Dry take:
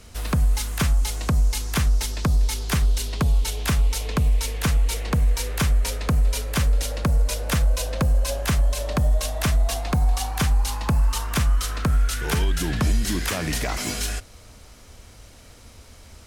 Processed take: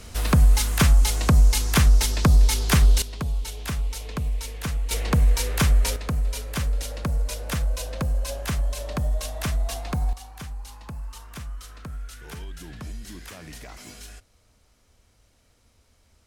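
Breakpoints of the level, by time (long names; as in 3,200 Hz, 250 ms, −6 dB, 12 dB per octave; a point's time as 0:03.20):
+4 dB
from 0:03.02 −7 dB
from 0:04.91 +1.5 dB
from 0:05.96 −5 dB
from 0:10.13 −15.5 dB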